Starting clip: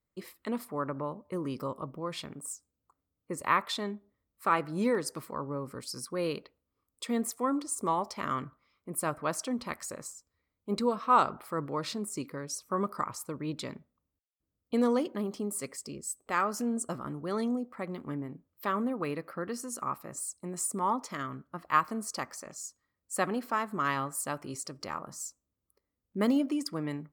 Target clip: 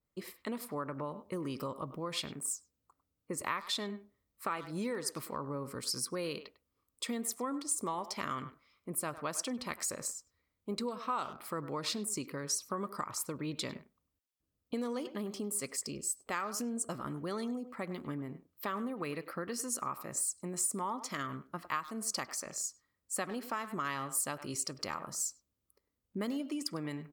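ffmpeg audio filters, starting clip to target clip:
-filter_complex "[0:a]asplit=2[a][b];[b]adelay=100,highpass=300,lowpass=3.4k,asoftclip=type=hard:threshold=-19dB,volume=-15dB[c];[a][c]amix=inputs=2:normalize=0,acompressor=threshold=-35dB:ratio=4,adynamicequalizer=threshold=0.00282:dfrequency=1900:dqfactor=0.7:tfrequency=1900:tqfactor=0.7:attack=5:release=100:ratio=0.375:range=3:mode=boostabove:tftype=highshelf"

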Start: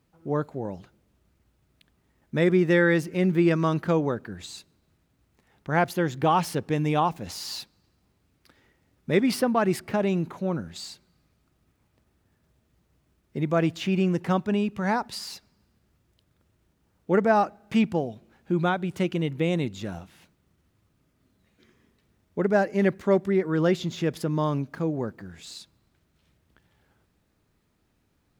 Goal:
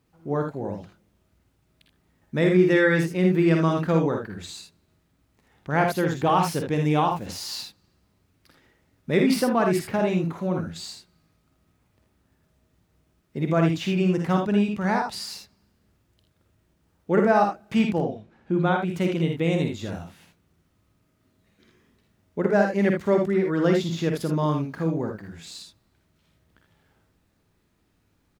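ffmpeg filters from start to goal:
-filter_complex "[0:a]asettb=1/sr,asplit=3[a][b][c];[a]atrim=end=17.974[d];[b]atrim=start=17.97:end=18.76,asetpts=PTS-STARTPTS,afade=t=in:d=0.004:c=qsin,afade=t=out:st=0.786:d=0.004:c=qsin,aemphasis=mode=reproduction:type=50fm[e];[c]atrim=start=18.756[f];[d][e]acrossfade=d=0.004:c1=hsin:c2=qsin[g];[g][f]acrossfade=d=0.004:c1=qsin:c2=hsin,aecho=1:1:49|60|79:0.422|0.422|0.422"

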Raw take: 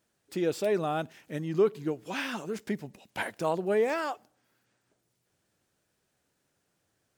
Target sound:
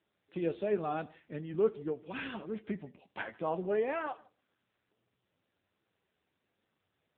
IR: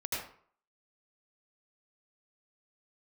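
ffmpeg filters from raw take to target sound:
-filter_complex "[0:a]flanger=delay=8.8:depth=3.6:regen=55:speed=1.2:shape=triangular,asplit=2[a][b];[1:a]atrim=start_sample=2205,atrim=end_sample=3528,adelay=76[c];[b][c]afir=irnorm=-1:irlink=0,volume=-20dB[d];[a][d]amix=inputs=2:normalize=0" -ar 8000 -c:a libopencore_amrnb -b:a 7400

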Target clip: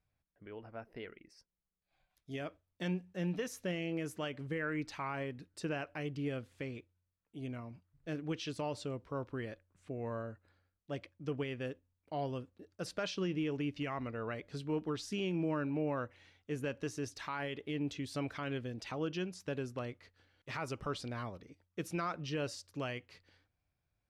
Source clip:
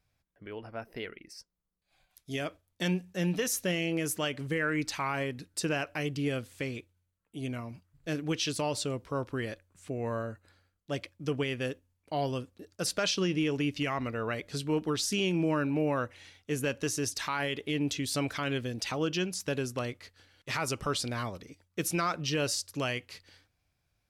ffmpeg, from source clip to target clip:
-af "lowpass=f=2.1k:p=1,volume=-6dB"

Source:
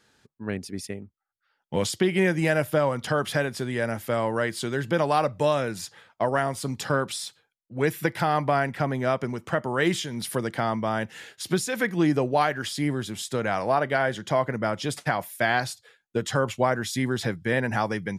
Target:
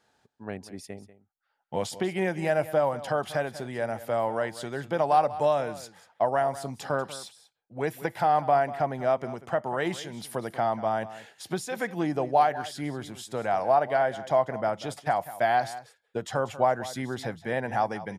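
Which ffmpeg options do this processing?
-af "equalizer=f=740:t=o:w=0.83:g=12,aecho=1:1:191:0.168,volume=-8dB"

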